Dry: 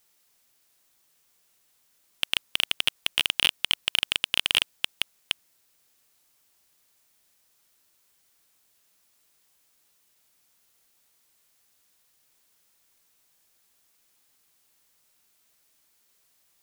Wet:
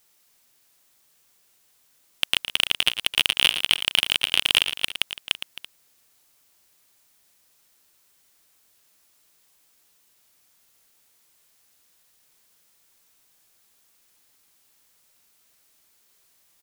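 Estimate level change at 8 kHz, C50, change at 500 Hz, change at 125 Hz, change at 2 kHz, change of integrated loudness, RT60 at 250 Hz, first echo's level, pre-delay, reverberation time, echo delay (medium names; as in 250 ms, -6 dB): +4.0 dB, no reverb, +4.0 dB, +4.0 dB, +4.0 dB, +4.0 dB, no reverb, -10.0 dB, no reverb, no reverb, 113 ms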